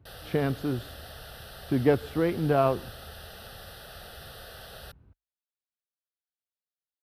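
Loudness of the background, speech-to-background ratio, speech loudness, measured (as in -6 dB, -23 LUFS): -44.5 LUFS, 17.0 dB, -27.5 LUFS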